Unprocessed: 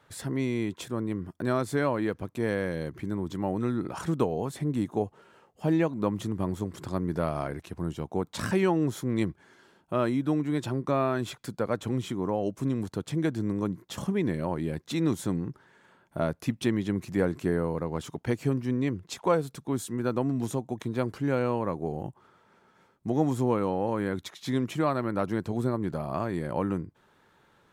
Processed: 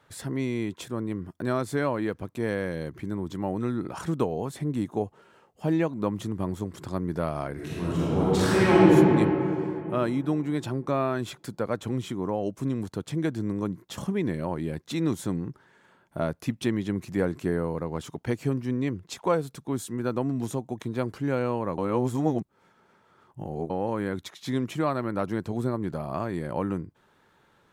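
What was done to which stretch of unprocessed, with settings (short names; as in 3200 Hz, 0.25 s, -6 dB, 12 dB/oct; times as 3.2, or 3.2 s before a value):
7.53–8.9 reverb throw, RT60 3 s, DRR -9 dB
21.78–23.7 reverse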